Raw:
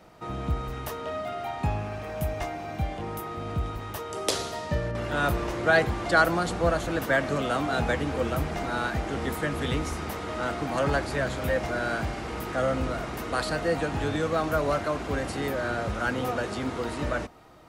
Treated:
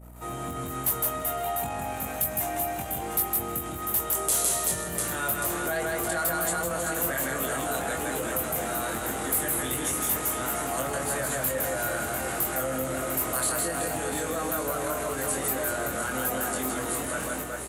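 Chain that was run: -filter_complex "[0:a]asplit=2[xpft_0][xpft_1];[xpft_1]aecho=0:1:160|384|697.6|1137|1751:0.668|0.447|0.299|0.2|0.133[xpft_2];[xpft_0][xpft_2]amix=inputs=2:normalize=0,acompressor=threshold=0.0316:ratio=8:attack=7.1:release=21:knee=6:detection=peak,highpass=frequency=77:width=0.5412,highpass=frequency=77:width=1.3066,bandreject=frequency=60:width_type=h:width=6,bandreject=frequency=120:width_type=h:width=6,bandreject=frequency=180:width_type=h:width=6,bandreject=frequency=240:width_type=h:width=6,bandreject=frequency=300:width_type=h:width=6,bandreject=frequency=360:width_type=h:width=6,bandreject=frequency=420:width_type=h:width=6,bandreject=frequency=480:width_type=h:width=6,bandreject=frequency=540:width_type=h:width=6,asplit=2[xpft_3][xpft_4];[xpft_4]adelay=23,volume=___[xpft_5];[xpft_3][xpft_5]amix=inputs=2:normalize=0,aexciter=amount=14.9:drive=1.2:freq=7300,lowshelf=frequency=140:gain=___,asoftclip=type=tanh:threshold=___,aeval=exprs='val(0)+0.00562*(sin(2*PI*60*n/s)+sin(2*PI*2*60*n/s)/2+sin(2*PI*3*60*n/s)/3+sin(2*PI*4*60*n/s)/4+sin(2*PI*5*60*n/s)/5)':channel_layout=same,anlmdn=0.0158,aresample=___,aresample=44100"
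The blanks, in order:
0.631, -9, 0.15, 32000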